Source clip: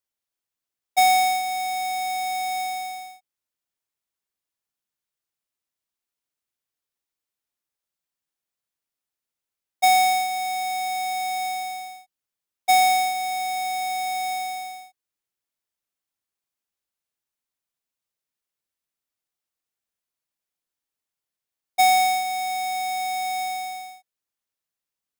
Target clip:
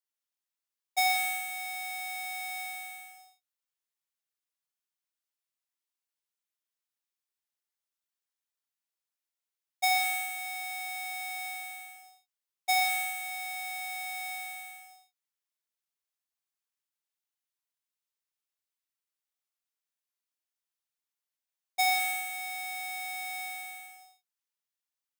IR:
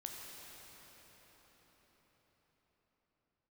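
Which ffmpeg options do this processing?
-filter_complex "[0:a]highpass=f=950:p=1[a];[1:a]atrim=start_sample=2205,afade=t=out:st=0.26:d=0.01,atrim=end_sample=11907[b];[a][b]afir=irnorm=-1:irlink=0"

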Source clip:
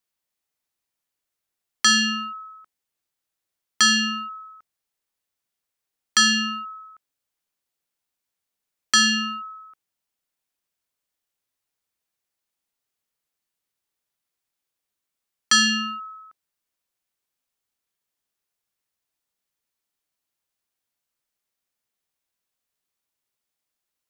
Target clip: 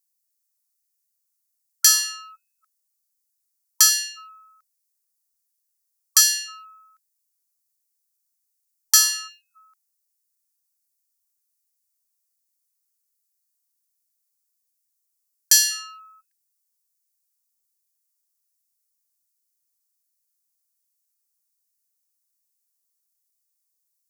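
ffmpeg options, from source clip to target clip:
-af "aeval=exprs='0.316*(cos(1*acos(clip(val(0)/0.316,-1,1)))-cos(1*PI/2))+0.0891*(cos(2*acos(clip(val(0)/0.316,-1,1)))-cos(2*PI/2))+0.0398*(cos(3*acos(clip(val(0)/0.316,-1,1)))-cos(3*PI/2))+0.002*(cos(5*acos(clip(val(0)/0.316,-1,1)))-cos(5*PI/2))':c=same,aexciter=amount=5.5:drive=6.8:freq=4.6k,afftfilt=real='re*gte(b*sr/1024,760*pow(1600/760,0.5+0.5*sin(2*PI*1.3*pts/sr)))':imag='im*gte(b*sr/1024,760*pow(1600/760,0.5+0.5*sin(2*PI*1.3*pts/sr)))':win_size=1024:overlap=0.75,volume=-7dB"

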